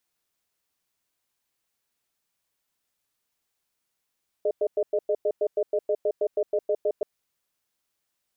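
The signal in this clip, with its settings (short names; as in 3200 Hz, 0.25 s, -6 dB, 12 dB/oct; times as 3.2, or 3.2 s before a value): cadence 423 Hz, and 610 Hz, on 0.06 s, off 0.10 s, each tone -23.5 dBFS 2.58 s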